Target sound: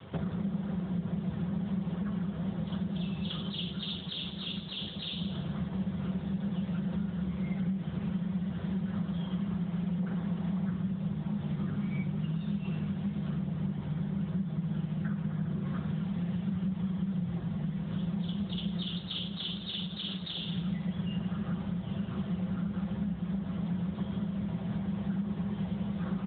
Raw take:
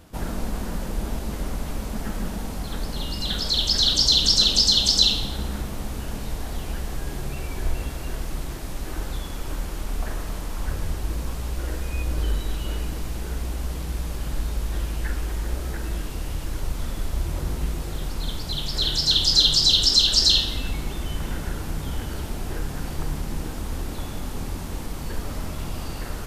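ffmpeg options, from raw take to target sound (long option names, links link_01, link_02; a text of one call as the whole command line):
ffmpeg -i in.wav -filter_complex "[0:a]adynamicequalizer=threshold=0.00708:dfrequency=240:dqfactor=0.77:tfrequency=240:tqfactor=0.77:attack=5:release=100:ratio=0.375:range=2:mode=boostabove:tftype=bell,asoftclip=type=hard:threshold=-18dB,bandreject=frequency=2700:width=6.5,aecho=1:1:6.9:0.46,acontrast=72,asplit=2[link_01][link_02];[link_02]adelay=1633,volume=-18dB,highshelf=frequency=4000:gain=-36.7[link_03];[link_01][link_03]amix=inputs=2:normalize=0,afreqshift=-210,acompressor=threshold=-29dB:ratio=16,asettb=1/sr,asplit=3[link_04][link_05][link_06];[link_04]atrim=end=13.374[link_07];[link_05]atrim=start=13.37:end=15.68,asetpts=PTS-STARTPTS,afade=type=in:duration=0.004:curve=qsin,afade=type=out:start_time=2.306:duration=0.004:curve=qsin,highshelf=frequency=2500:gain=-5[link_08];[link_06]atrim=start=15.676[link_09];[link_07][link_08]acrossfade=duration=0.004:curve1=hsin:curve2=qsin[link_10];[link_10][link_09]acrossfade=duration=0.004:curve1=qsin:curve2=hsin" -ar 8000 -c:a libopencore_amrnb -b:a 10200 out.amr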